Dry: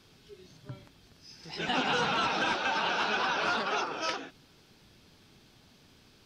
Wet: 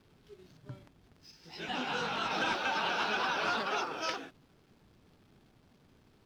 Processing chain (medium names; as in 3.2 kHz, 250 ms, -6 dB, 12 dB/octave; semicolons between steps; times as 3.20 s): hysteresis with a dead band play -54 dBFS; 1.31–2.31 s: detune thickener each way 40 cents; trim -2.5 dB